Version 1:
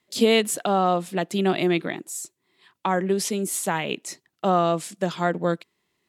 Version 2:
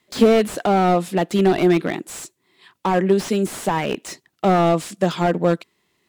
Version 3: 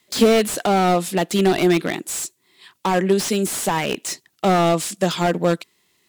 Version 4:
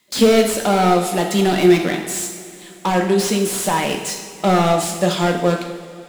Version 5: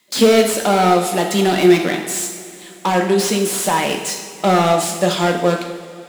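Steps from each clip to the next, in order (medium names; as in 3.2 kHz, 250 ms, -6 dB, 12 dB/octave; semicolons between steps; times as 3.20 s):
slew-rate limiter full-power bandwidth 75 Hz; trim +6.5 dB
treble shelf 3 kHz +10.5 dB; trim -1 dB
reverberation, pre-delay 3 ms, DRR 2 dB
bass shelf 100 Hz -12 dB; trim +2 dB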